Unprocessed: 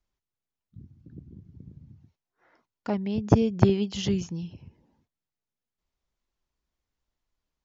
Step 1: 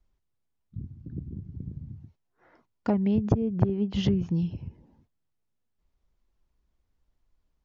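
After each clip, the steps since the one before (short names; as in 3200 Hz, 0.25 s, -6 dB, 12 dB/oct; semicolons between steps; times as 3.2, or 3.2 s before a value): treble ducked by the level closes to 1700 Hz, closed at -22 dBFS; tilt -2 dB/oct; compressor 8:1, threshold -23 dBFS, peak gain reduction 16.5 dB; gain +3 dB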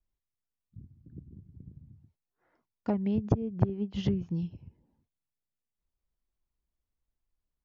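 upward expander 1.5:1, over -38 dBFS; gain -2 dB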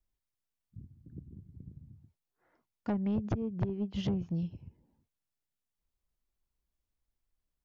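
soft clip -25 dBFS, distortion -9 dB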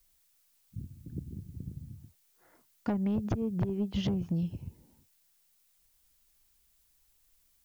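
compressor 4:1, threshold -36 dBFS, peak gain reduction 8 dB; added noise blue -77 dBFS; gain +7.5 dB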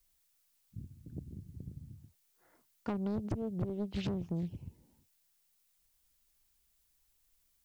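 Doppler distortion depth 0.62 ms; gain -4.5 dB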